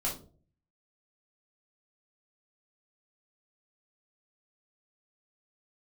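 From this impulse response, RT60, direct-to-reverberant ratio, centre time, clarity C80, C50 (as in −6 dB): 0.45 s, −4.0 dB, 24 ms, 14.5 dB, 8.0 dB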